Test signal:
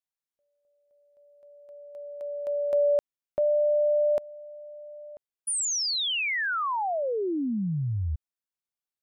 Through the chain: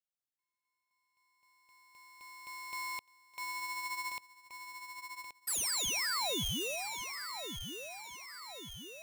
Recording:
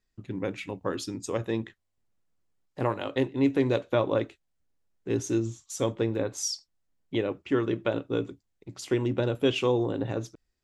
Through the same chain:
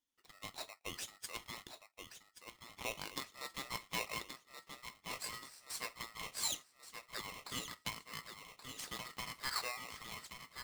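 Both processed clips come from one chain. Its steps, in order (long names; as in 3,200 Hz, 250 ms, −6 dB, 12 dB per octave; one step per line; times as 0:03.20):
high-pass filter 1,100 Hz 12 dB per octave
on a send: feedback echo with a low-pass in the loop 1,127 ms, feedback 60%, low-pass 4,400 Hz, level −7 dB
on the sum: ring modulator with a square carrier 1,600 Hz
level −6 dB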